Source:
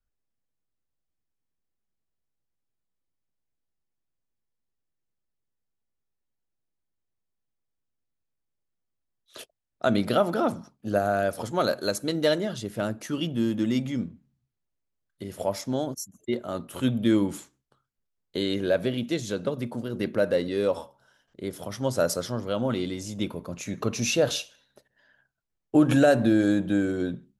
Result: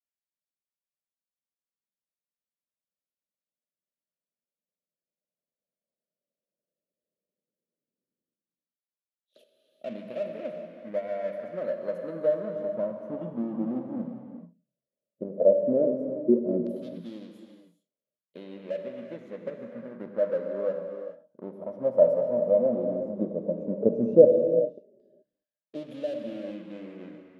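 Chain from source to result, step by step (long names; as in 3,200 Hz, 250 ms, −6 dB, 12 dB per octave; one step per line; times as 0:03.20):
drawn EQ curve 100 Hz 0 dB, 180 Hz +15 dB, 390 Hz +3 dB, 610 Hz +11 dB, 880 Hz −26 dB, 7,700 Hz −21 dB, 11,000 Hz −9 dB
transient designer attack +4 dB, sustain −1 dB
in parallel at −11 dB: hard clipping −28.5 dBFS, distortion −1 dB
on the sum: auto-filter band-pass saw down 0.12 Hz 340–4,400 Hz
reverb whose tail is shaped and stops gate 450 ms flat, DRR 3.5 dB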